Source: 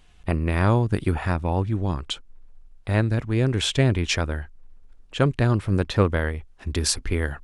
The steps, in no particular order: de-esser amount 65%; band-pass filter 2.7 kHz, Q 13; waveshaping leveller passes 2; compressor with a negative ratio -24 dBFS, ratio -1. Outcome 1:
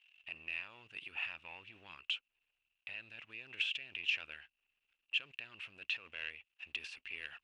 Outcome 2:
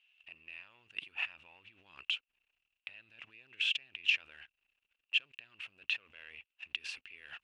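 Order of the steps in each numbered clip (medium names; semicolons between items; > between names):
compressor with a negative ratio > de-esser > waveshaping leveller > band-pass filter; de-esser > waveshaping leveller > compressor with a negative ratio > band-pass filter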